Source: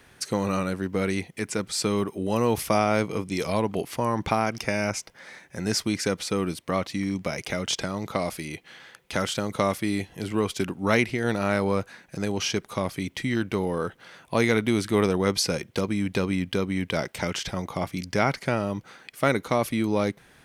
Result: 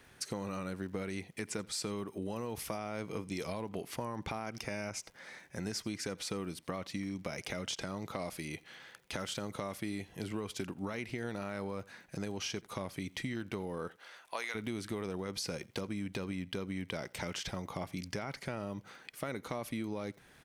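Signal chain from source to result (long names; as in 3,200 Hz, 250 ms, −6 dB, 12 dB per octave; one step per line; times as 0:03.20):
0:13.87–0:14.54: high-pass filter 350 Hz → 1,100 Hz 12 dB per octave
brickwall limiter −15 dBFS, peak gain reduction 9.5 dB
downward compressor, threshold −29 dBFS, peak gain reduction 8.5 dB
surface crackle 62 per second −48 dBFS
single-tap delay 85 ms −24 dB
level −5.5 dB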